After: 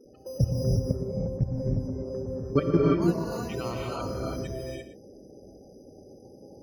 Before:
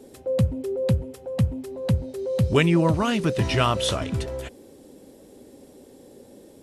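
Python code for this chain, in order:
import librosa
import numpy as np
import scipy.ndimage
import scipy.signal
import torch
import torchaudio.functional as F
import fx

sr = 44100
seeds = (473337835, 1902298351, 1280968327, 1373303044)

y = fx.spec_quant(x, sr, step_db=30)
y = fx.level_steps(y, sr, step_db=18)
y = np.repeat(scipy.signal.resample_poly(y, 1, 8), 8)[:len(y)]
y = fx.lowpass(y, sr, hz=1100.0, slope=6, at=(0.61, 3.02))
y = fx.spec_topn(y, sr, count=64)
y = y + 10.0 ** (-12.5 / 20.0) * np.pad(y, (int(116 * sr / 1000.0), 0))[:len(y)]
y = fx.rev_gated(y, sr, seeds[0], gate_ms=370, shape='rising', drr_db=-2.5)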